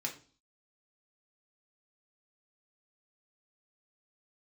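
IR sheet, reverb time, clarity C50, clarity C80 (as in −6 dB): 0.40 s, 11.5 dB, 16.5 dB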